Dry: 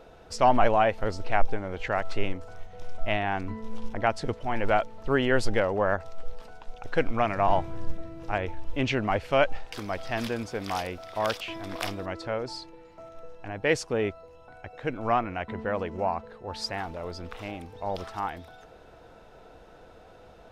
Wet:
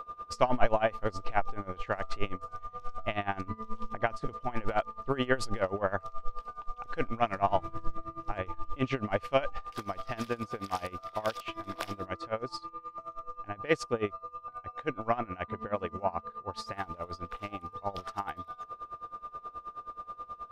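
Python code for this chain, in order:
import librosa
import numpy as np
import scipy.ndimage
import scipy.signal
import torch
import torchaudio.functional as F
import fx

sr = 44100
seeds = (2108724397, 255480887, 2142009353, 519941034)

y = x + 10.0 ** (-35.0 / 20.0) * np.sin(2.0 * np.pi * 1200.0 * np.arange(len(x)) / sr)
y = y * 10.0 ** (-20 * (0.5 - 0.5 * np.cos(2.0 * np.pi * 9.4 * np.arange(len(y)) / sr)) / 20.0)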